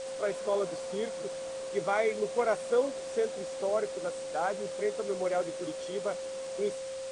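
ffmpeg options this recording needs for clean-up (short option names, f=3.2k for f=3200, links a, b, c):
-af "adeclick=t=4,bandreject=f=530:w=30,afwtdn=0.005"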